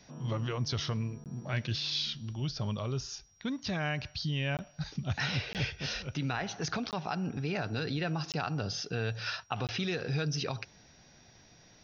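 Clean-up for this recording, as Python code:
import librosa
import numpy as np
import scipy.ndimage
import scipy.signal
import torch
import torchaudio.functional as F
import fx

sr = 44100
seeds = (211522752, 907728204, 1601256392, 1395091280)

y = fx.notch(x, sr, hz=5700.0, q=30.0)
y = fx.fix_interpolate(y, sr, at_s=(1.24, 4.57, 5.53, 6.91, 8.32, 9.67), length_ms=18.0)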